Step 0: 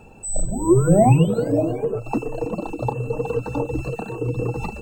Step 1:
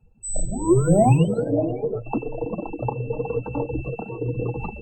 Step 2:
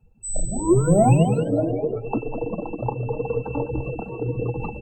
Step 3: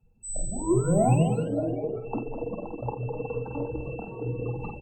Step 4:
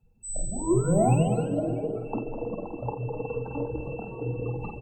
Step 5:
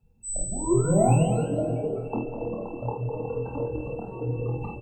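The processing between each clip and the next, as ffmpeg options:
-af "afftdn=nr=26:nf=-33,volume=-2dB"
-af "aecho=1:1:204:0.355"
-filter_complex "[0:a]asplit=2[a][b];[b]adelay=49,volume=-5dB[c];[a][c]amix=inputs=2:normalize=0,volume=-7dB"
-filter_complex "[0:a]asplit=2[a][b];[b]adelay=317,lowpass=f=4.4k:p=1,volume=-13dB,asplit=2[c][d];[d]adelay=317,lowpass=f=4.4k:p=1,volume=0.46,asplit=2[e][f];[f]adelay=317,lowpass=f=4.4k:p=1,volume=0.46,asplit=2[g][h];[h]adelay=317,lowpass=f=4.4k:p=1,volume=0.46,asplit=2[i][j];[j]adelay=317,lowpass=f=4.4k:p=1,volume=0.46[k];[a][c][e][g][i][k]amix=inputs=6:normalize=0"
-filter_complex "[0:a]asplit=2[a][b];[b]adelay=26,volume=-4dB[c];[a][c]amix=inputs=2:normalize=0"

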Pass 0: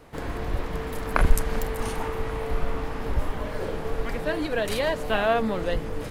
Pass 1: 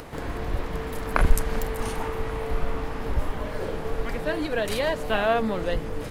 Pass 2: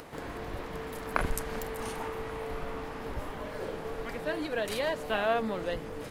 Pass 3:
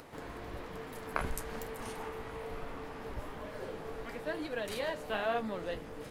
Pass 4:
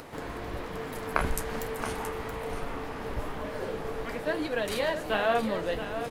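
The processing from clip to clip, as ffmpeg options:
-af "acompressor=mode=upward:threshold=-32dB:ratio=2.5"
-af "lowshelf=f=96:g=-11.5,volume=-5dB"
-af "flanger=delay=7.7:depth=9.4:regen=-45:speed=1.1:shape=sinusoidal,volume=-1dB"
-af "aecho=1:1:675:0.316,volume=7dB"

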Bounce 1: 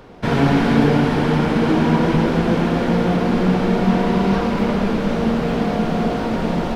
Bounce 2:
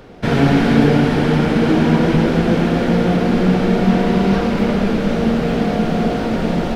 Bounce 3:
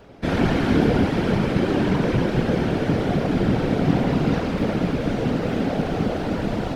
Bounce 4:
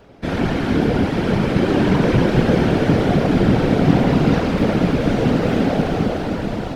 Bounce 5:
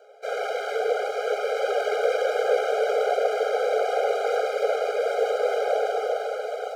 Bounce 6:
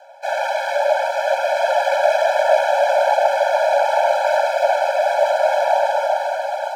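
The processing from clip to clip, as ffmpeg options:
-af "equalizer=f=1k:t=o:w=0.45:g=-6,volume=2.5dB"
-af "afftfilt=real='hypot(re,im)*cos(2*PI*random(0))':imag='hypot(re,im)*sin(2*PI*random(1))':win_size=512:overlap=0.75"
-af "dynaudnorm=f=290:g=9:m=11.5dB"
-filter_complex "[0:a]acrossover=split=320|890|1500[a][b][c][d];[d]aeval=exprs='max(val(0),0)':c=same[e];[a][b][c][e]amix=inputs=4:normalize=0,afftfilt=real='re*eq(mod(floor(b*sr/1024/410),2),1)':imag='im*eq(mod(floor(b*sr/1024/410),2),1)':win_size=1024:overlap=0.75"
-af "afreqshift=130,volume=7dB"

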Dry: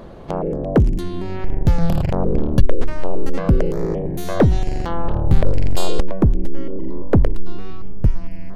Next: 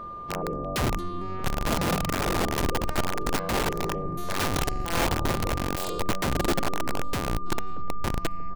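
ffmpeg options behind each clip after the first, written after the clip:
-af "aecho=1:1:633|1266|1899|2532:0.0794|0.0445|0.0249|0.0139,aeval=exprs='(mod(4.22*val(0)+1,2)-1)/4.22':c=same,aeval=exprs='val(0)+0.0447*sin(2*PI*1200*n/s)':c=same,volume=-8.5dB"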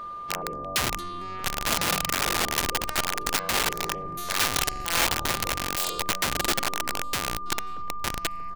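-af "tiltshelf=f=970:g=-8"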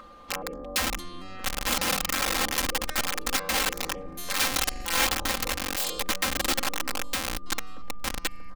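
-af "aecho=1:1:3.8:0.96,volume=-3.5dB"

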